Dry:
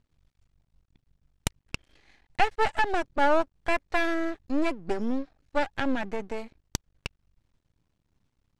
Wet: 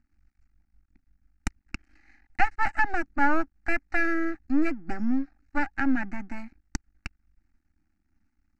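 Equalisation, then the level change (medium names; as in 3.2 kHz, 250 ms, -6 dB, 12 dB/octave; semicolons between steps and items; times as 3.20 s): distance through air 96 m; high-order bell 520 Hz -14 dB 1 oct; static phaser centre 680 Hz, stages 8; +4.5 dB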